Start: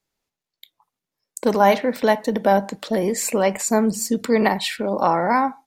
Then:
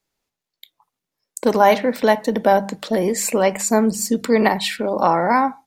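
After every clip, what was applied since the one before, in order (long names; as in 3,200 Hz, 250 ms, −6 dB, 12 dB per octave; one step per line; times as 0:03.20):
mains-hum notches 50/100/150/200 Hz
level +2 dB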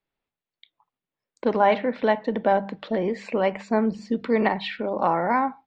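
low-pass filter 3,500 Hz 24 dB per octave
level −5.5 dB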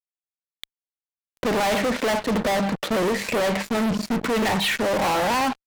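fuzz pedal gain 40 dB, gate −43 dBFS
level −7 dB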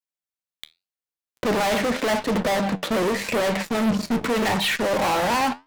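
flanger 0.83 Hz, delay 5.2 ms, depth 8.7 ms, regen +73%
level +4.5 dB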